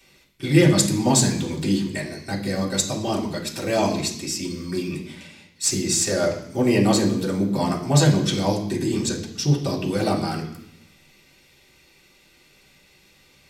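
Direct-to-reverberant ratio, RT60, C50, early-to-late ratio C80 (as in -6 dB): -4.5 dB, 0.75 s, 8.0 dB, 11.5 dB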